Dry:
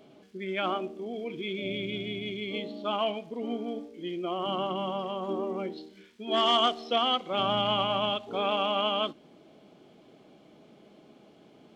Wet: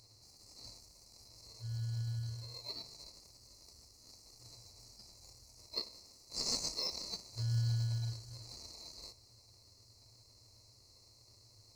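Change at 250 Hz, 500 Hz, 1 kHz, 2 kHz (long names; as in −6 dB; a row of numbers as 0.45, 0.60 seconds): −21.5, −27.5, −30.5, −23.5 decibels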